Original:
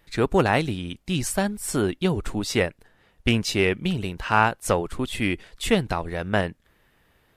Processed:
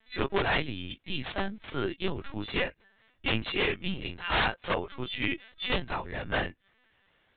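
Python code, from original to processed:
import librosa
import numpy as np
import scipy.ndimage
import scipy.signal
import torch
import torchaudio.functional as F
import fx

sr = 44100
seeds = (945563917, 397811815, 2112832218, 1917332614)

y = fx.freq_snap(x, sr, grid_st=2)
y = (np.mod(10.0 ** (11.0 / 20.0) * y + 1.0, 2.0) - 1.0) / 10.0 ** (11.0 / 20.0)
y = fx.lpc_vocoder(y, sr, seeds[0], excitation='pitch_kept', order=16)
y = F.gain(torch.from_numpy(y), -7.0).numpy()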